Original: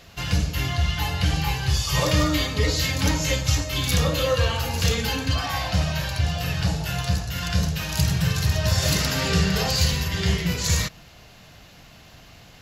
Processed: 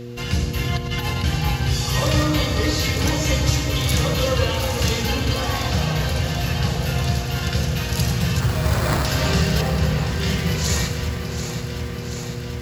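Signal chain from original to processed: 0.72–1.24 s: compressor with a negative ratio -26 dBFS, ratio -0.5; mains buzz 120 Hz, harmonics 4, -34 dBFS -2 dB/octave; 8.40–9.05 s: sample-rate reducer 3 kHz, jitter 0%; 9.61–10.21 s: distance through air 450 m; echo whose repeats swap between lows and highs 367 ms, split 1.8 kHz, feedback 85%, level -7.5 dB; on a send at -8.5 dB: reverberation RT60 1.5 s, pre-delay 62 ms

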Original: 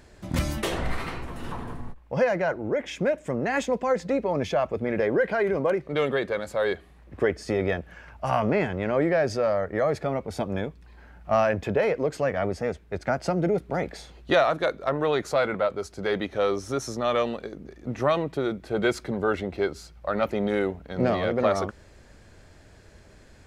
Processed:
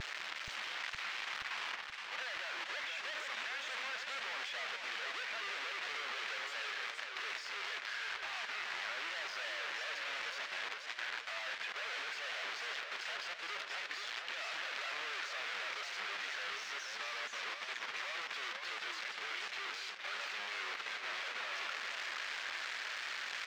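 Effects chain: one-bit comparator; Chebyshev high-pass 1.9 kHz, order 2; vibrato 1.1 Hz 45 cents; speakerphone echo 200 ms, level -12 dB; level held to a coarse grid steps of 19 dB; distance through air 190 m; modulated delay 473 ms, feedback 56%, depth 174 cents, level -5 dB; trim -1 dB

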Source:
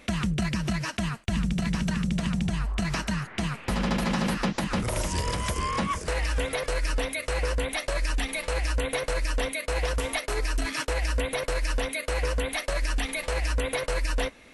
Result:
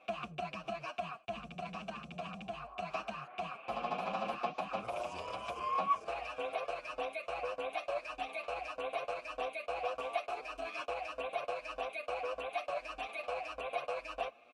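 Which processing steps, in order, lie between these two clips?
vowel filter a; endless flanger 7.4 ms +1.7 Hz; trim +7 dB

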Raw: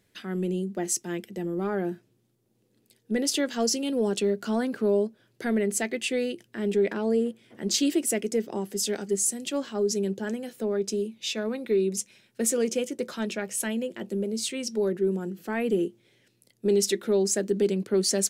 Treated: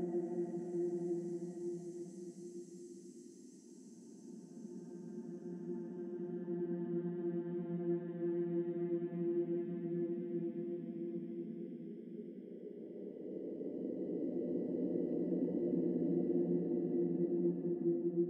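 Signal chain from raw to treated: auto-wah 250–2500 Hz, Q 9, down, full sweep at -31 dBFS; Paulstretch 29×, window 0.25 s, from 0.84 s; trim +9 dB

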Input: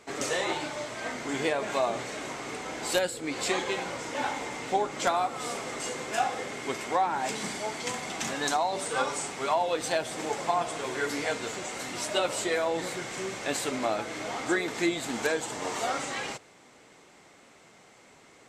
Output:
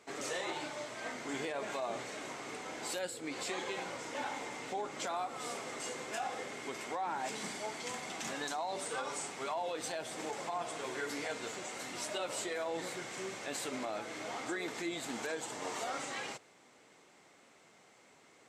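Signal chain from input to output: high-pass 140 Hz 6 dB/octave; peak limiter -22 dBFS, peak gain reduction 9.5 dB; trim -6.5 dB

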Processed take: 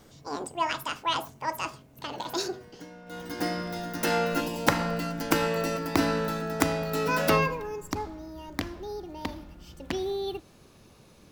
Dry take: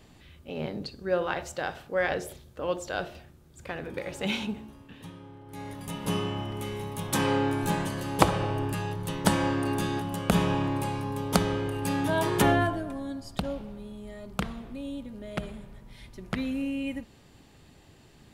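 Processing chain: gliding tape speed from 185% -> 139%; time-frequency box 4.41–4.68 s, 1.1–2.2 kHz -10 dB

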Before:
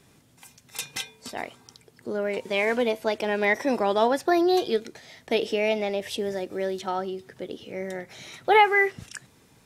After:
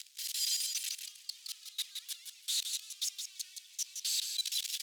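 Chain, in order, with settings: one-bit comparator; high-pass 1.5 kHz 24 dB/octave; treble shelf 2.2 kHz +9.5 dB; level held to a coarse grid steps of 22 dB; tape spacing loss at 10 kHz 28 dB; feedback delay 338 ms, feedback 21%, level -5 dB; speed mistake 7.5 ips tape played at 15 ips; three bands expanded up and down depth 40%

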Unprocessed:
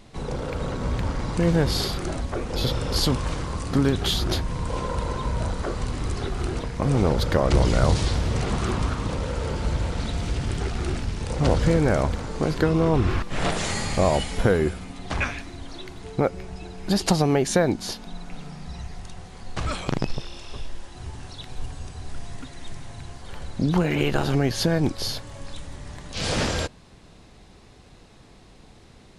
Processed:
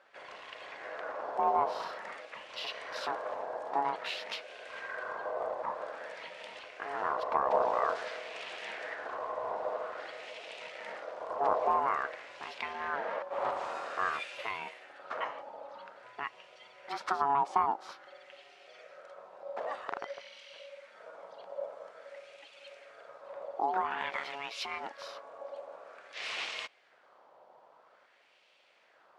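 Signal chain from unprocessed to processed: ring modulator 560 Hz; LFO band-pass sine 0.5 Hz 880–2700 Hz

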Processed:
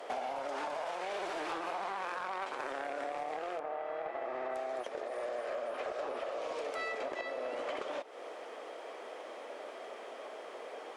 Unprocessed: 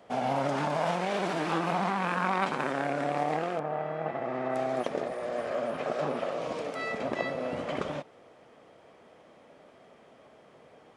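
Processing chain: high-pass 360 Hz 24 dB/octave; compression 10:1, threshold -45 dBFS, peak gain reduction 21 dB; sine folder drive 4 dB, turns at -33 dBFS; trim +3 dB

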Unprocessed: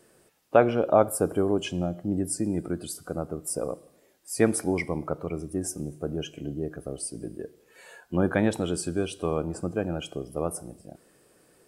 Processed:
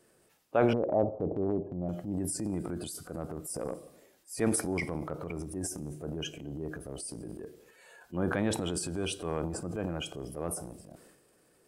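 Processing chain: 0.73–1.89 s: steep low-pass 820 Hz 36 dB/octave; transient shaper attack -4 dB, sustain +9 dB; trim -6 dB

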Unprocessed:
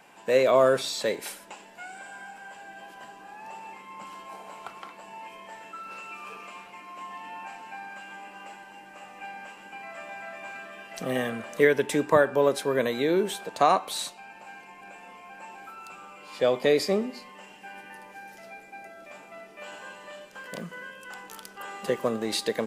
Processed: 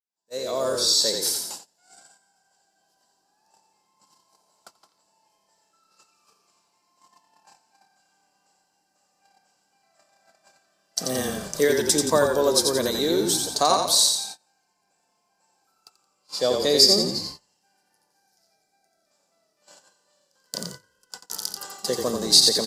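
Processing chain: fade-in on the opening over 1.37 s; resonant high shelf 3.5 kHz +12 dB, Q 3; de-hum 46.97 Hz, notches 4; on a send: frequency-shifting echo 87 ms, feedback 44%, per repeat -34 Hz, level -4.5 dB; on the sum: gate -35 dBFS, range -26 dB

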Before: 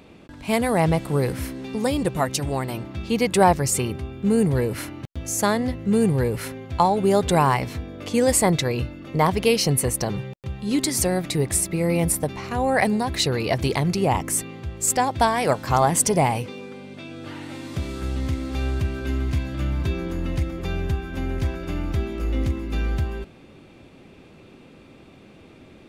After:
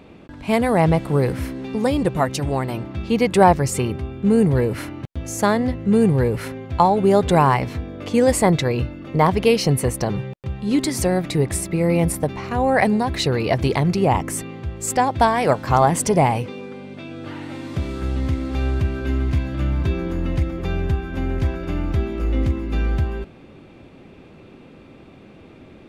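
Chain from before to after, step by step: treble shelf 4 kHz -9.5 dB; trim +3.5 dB

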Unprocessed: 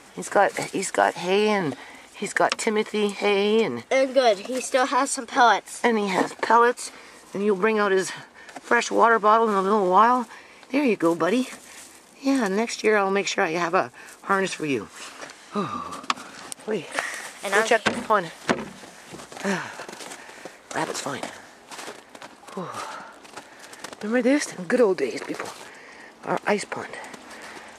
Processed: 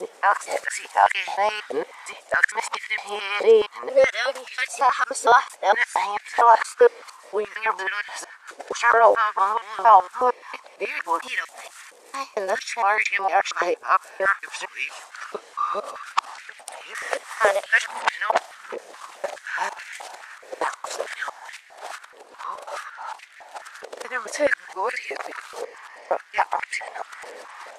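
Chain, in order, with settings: time reversed locally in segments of 229 ms; step-sequenced high-pass 4.7 Hz 480–2000 Hz; trim -3 dB

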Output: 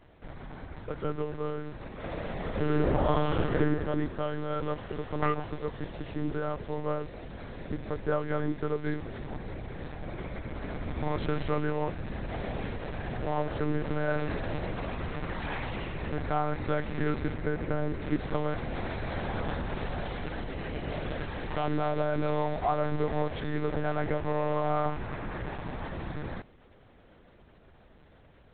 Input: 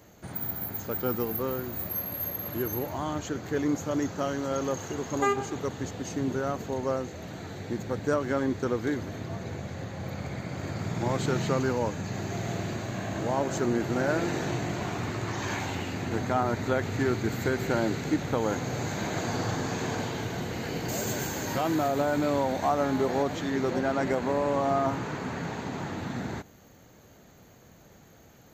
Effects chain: 1.94–3.55 s: reverb throw, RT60 1.7 s, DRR -8 dB; 17.34–18.03 s: treble shelf 2.4 kHz -11 dB; monotone LPC vocoder at 8 kHz 150 Hz; trim -2 dB

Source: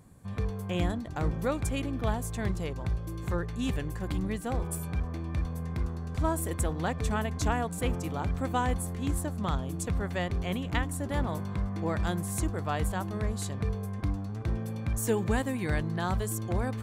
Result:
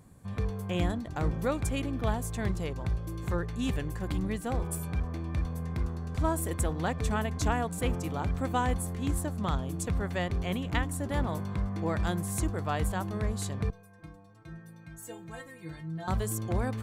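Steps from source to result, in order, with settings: 13.70–16.08 s: inharmonic resonator 160 Hz, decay 0.33 s, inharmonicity 0.008

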